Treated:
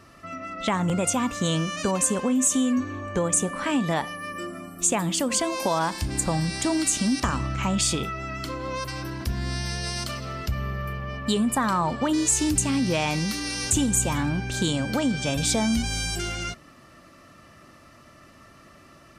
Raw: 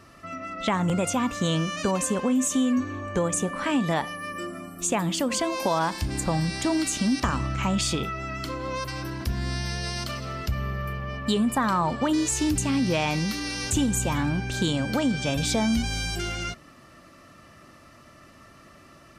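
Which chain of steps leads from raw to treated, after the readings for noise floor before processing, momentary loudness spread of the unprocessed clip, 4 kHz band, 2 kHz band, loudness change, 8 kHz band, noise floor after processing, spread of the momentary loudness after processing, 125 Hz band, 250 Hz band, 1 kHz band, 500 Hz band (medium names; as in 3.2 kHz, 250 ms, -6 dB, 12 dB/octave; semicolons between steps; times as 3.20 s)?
-52 dBFS, 8 LU, +1.0 dB, 0.0 dB, +1.0 dB, +5.5 dB, -52 dBFS, 10 LU, 0.0 dB, 0.0 dB, 0.0 dB, 0.0 dB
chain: dynamic bell 8.7 kHz, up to +7 dB, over -44 dBFS, Q 1.1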